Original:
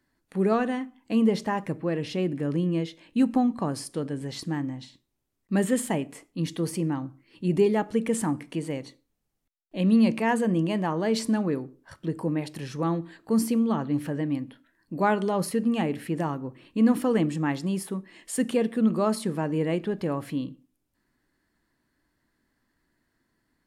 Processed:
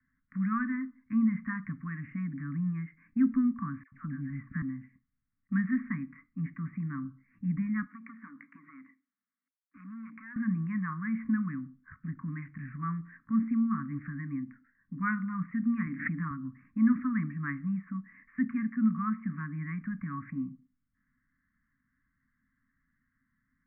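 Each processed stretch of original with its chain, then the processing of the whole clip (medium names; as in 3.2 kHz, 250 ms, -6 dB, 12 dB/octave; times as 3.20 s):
3.83–4.62 s: bass shelf 130 Hz +8.5 dB + phase dispersion lows, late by 87 ms, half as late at 1.1 kHz
7.86–10.36 s: high-pass 280 Hz 24 dB/octave + compression 3:1, threshold -37 dBFS + transformer saturation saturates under 750 Hz
15.86–16.31 s: resonant low shelf 130 Hz -13.5 dB, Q 1.5 + comb 6.6 ms, depth 39% + swell ahead of each attack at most 82 dB/s
whole clip: Chebyshev band-stop 270–1100 Hz, order 5; dynamic bell 130 Hz, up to -4 dB, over -38 dBFS, Q 1.2; steep low-pass 2.2 kHz 96 dB/octave; trim -1.5 dB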